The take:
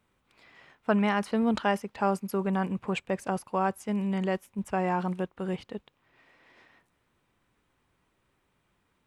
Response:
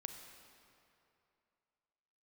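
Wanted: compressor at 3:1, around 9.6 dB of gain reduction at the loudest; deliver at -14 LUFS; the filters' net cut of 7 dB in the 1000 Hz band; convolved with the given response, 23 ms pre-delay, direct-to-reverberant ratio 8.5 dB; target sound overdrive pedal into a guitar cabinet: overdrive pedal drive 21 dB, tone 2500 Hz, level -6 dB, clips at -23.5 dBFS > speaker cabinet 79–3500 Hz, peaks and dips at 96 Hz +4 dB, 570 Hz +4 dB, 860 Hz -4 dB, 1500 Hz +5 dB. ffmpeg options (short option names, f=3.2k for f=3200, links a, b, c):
-filter_complex "[0:a]equalizer=f=1k:t=o:g=-8.5,acompressor=threshold=-36dB:ratio=3,asplit=2[a][b];[1:a]atrim=start_sample=2205,adelay=23[c];[b][c]afir=irnorm=-1:irlink=0,volume=-5.5dB[d];[a][d]amix=inputs=2:normalize=0,asplit=2[e][f];[f]highpass=f=720:p=1,volume=21dB,asoftclip=type=tanh:threshold=-23.5dB[g];[e][g]amix=inputs=2:normalize=0,lowpass=f=2.5k:p=1,volume=-6dB,highpass=79,equalizer=f=96:t=q:w=4:g=4,equalizer=f=570:t=q:w=4:g=4,equalizer=f=860:t=q:w=4:g=-4,equalizer=f=1.5k:t=q:w=4:g=5,lowpass=f=3.5k:w=0.5412,lowpass=f=3.5k:w=1.3066,volume=20dB"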